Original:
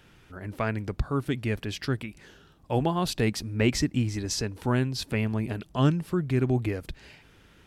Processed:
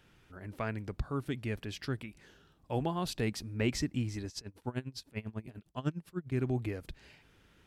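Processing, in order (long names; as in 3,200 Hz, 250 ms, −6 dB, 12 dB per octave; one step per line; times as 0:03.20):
0:04.28–0:06.32: tremolo with a sine in dB 10 Hz, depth 24 dB
level −7.5 dB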